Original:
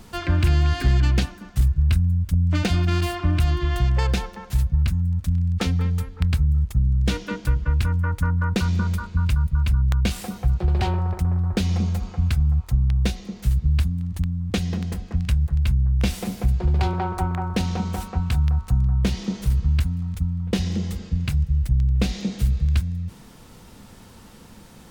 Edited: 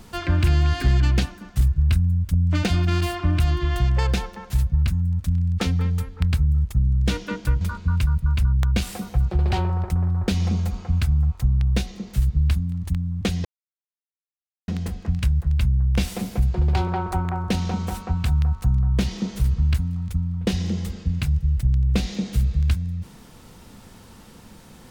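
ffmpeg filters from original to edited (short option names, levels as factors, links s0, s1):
-filter_complex "[0:a]asplit=3[s0][s1][s2];[s0]atrim=end=7.612[s3];[s1]atrim=start=8.898:end=14.74,asetpts=PTS-STARTPTS,afade=t=out:st=5.838:d=0.004:c=hsin,apad=pad_dur=1.23[s4];[s2]atrim=start=14.74,asetpts=PTS-STARTPTS,afade=t=in:d=0.004:c=hsin[s5];[s4][s5]concat=n=2:v=0:a=1[s6];[s3][s6]acrossfade=d=0.004:c1=hsin:c2=hsin"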